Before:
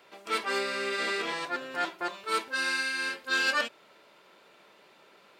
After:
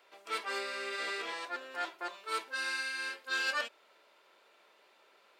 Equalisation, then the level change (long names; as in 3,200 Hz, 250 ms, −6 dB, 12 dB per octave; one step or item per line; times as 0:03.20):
high-pass filter 400 Hz 12 dB per octave
−6.0 dB